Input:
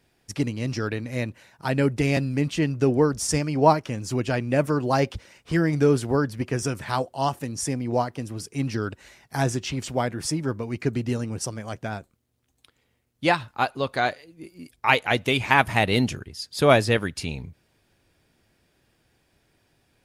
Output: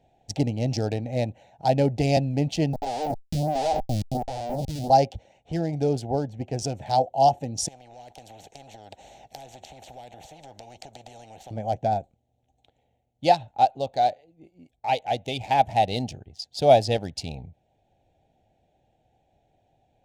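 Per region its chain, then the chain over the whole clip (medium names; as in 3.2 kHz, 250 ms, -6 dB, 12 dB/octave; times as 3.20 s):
2.73–4.90 s: band-pass filter 200 Hz, Q 0.92 + Schmitt trigger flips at -33.5 dBFS + lamp-driven phase shifter 1.4 Hz
7.68–11.51 s: gate -42 dBFS, range -7 dB + compression 5:1, threshold -34 dBFS + spectrum-flattening compressor 4:1
whole clip: local Wiener filter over 9 samples; FFT filter 110 Hz 0 dB, 390 Hz -4 dB, 790 Hz +12 dB, 1.1 kHz -21 dB, 4.8 kHz +7 dB, 11 kHz -4 dB; gain riding 2 s; trim -3.5 dB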